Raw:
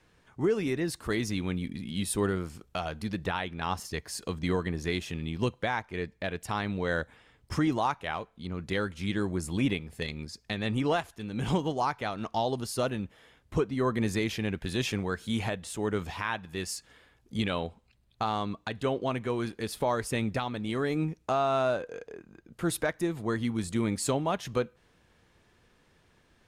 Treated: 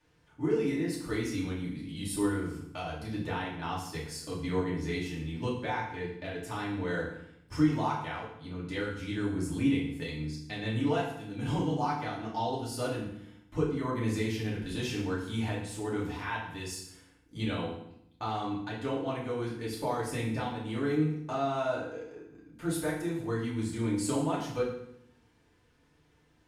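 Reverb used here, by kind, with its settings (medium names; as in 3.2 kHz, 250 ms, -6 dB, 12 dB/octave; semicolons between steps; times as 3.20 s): FDN reverb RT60 0.72 s, low-frequency decay 1.45×, high-frequency decay 0.9×, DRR -6.5 dB; trim -11 dB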